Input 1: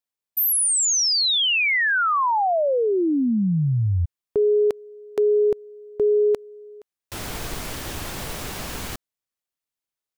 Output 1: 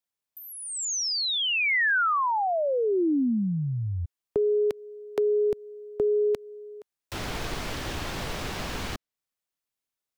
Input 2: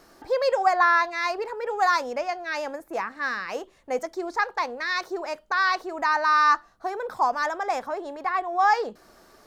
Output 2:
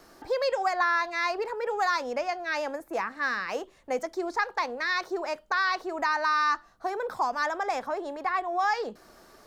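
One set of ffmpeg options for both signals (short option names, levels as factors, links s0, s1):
-filter_complex "[0:a]acrossover=split=280|1800|5900[s0][s1][s2][s3];[s0]acompressor=threshold=0.0316:ratio=4[s4];[s1]acompressor=threshold=0.0501:ratio=4[s5];[s2]acompressor=threshold=0.0355:ratio=4[s6];[s3]acompressor=threshold=0.00282:ratio=4[s7];[s4][s5][s6][s7]amix=inputs=4:normalize=0"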